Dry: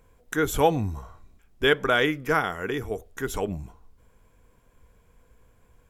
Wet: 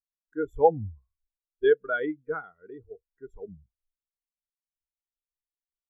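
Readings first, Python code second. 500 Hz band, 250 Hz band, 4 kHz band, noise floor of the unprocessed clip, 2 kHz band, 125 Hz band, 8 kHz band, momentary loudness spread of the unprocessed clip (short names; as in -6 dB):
0.0 dB, -7.0 dB, -19.5 dB, -61 dBFS, -9.0 dB, -9.5 dB, under -35 dB, 11 LU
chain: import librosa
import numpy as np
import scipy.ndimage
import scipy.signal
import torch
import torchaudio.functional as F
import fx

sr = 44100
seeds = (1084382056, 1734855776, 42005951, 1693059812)

y = fx.spectral_expand(x, sr, expansion=2.5)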